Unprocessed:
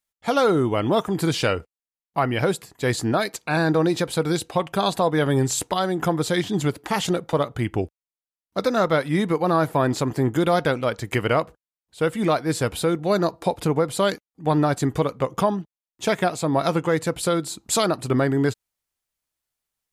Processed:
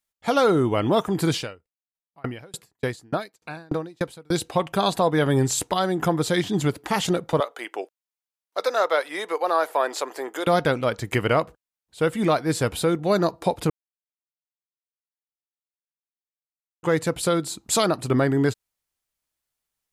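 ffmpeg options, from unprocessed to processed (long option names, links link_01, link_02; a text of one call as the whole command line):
ffmpeg -i in.wav -filter_complex "[0:a]asettb=1/sr,asplit=3[link_01][link_02][link_03];[link_01]atrim=end=1.364[link_04];[link_02]atrim=start=1.36:end=4.32,asetpts=PTS-STARTPTS,afade=type=in:duration=0.004:curve=qsin,afade=type=out:start_time=2.956:duration=0.004:curve=qsin,aeval=exprs='val(0)*pow(10,-35*if(lt(mod(3.4*n/s,1),2*abs(3.4)/1000),1-mod(3.4*n/s,1)/(2*abs(3.4)/1000),(mod(3.4*n/s,1)-2*abs(3.4)/1000)/(1-2*abs(3.4)/1000))/20)':channel_layout=same[link_05];[link_03]atrim=start=4.316[link_06];[link_04][link_05]acrossfade=duration=0.004:curve1=hsin:curve2=qsin[link_07];[link_07][link_06]acrossfade=duration=0.004:curve1=qsin:curve2=hsin,asettb=1/sr,asplit=3[link_08][link_09][link_10];[link_08]atrim=end=7.404[link_11];[link_09]atrim=start=7.4:end=10.47,asetpts=PTS-STARTPTS,afade=type=in:duration=0.004:curve=qsin,afade=type=out:start_time=3.066:duration=0.004:curve=qsin,highpass=frequency=460:width=0.5412,highpass=frequency=460:width=1.3066[link_12];[link_10]atrim=start=10.466[link_13];[link_11][link_12]acrossfade=duration=0.004:curve1=hsin:curve2=qsin[link_14];[link_14][link_13]acrossfade=duration=0.004:curve1=qsin:curve2=hsin,asplit=3[link_15][link_16][link_17];[link_15]atrim=end=13.7,asetpts=PTS-STARTPTS,afade=type=out:start_time=13.696:duration=0.004:curve=hsin[link_18];[link_16]atrim=start=13.7:end=16.83,asetpts=PTS-STARTPTS,volume=0[link_19];[link_17]atrim=start=16.83,asetpts=PTS-STARTPTS,afade=type=in:duration=0.004:curve=hsin[link_20];[link_18][link_19][link_20]concat=n=3:v=0:a=1" out.wav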